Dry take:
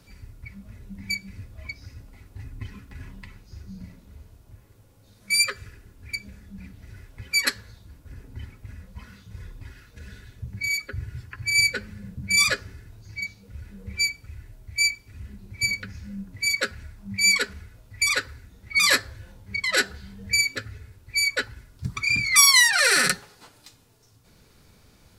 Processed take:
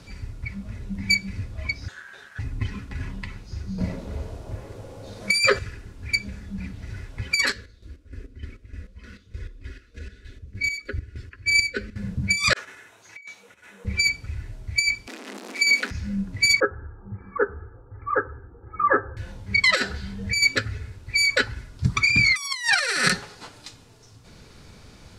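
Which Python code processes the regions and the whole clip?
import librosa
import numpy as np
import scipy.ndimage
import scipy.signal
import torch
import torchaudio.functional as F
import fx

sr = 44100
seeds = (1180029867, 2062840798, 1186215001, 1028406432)

y = fx.chain(x, sr, fx.low_shelf(hz=210.0, db=-7.0),
    fx.comb(ms=6.5, depth=0.97),
    fx.ring_mod(carrier_hz=1600.0), at=(1.88, 2.39))
y = fx.chain(y, sr, fx.peak_eq(hz=560.0, db=11.0, octaves=1.5),
    fx.over_compress(threshold_db=-27.0, ratio=-1.0), at=(3.78, 5.59))
y = fx.chain(y, sr, fx.high_shelf(hz=3100.0, db=-7.5),
    fx.chopper(hz=3.3, depth_pct=65, duty_pct=45),
    fx.fixed_phaser(hz=350.0, stages=4), at=(7.52, 11.96))
y = fx.chain(y, sr, fx.peak_eq(hz=4700.0, db=-14.5, octaves=0.33),
    fx.over_compress(threshold_db=-40.0, ratio=-0.5),
    fx.highpass(hz=700.0, slope=12), at=(12.53, 13.85))
y = fx.chain(y, sr, fx.zero_step(step_db=-35.5),
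    fx.steep_highpass(hz=230.0, slope=72), at=(15.07, 15.91))
y = fx.chain(y, sr, fx.cheby_ripple(hz=1600.0, ripple_db=3),
    fx.low_shelf(hz=80.0, db=-11.5),
    fx.comb(ms=2.4, depth=0.77), at=(16.6, 19.17))
y = scipy.signal.sosfilt(scipy.signal.butter(2, 7700.0, 'lowpass', fs=sr, output='sos'), y)
y = fx.over_compress(y, sr, threshold_db=-24.0, ratio=-0.5)
y = y * 10.0 ** (5.5 / 20.0)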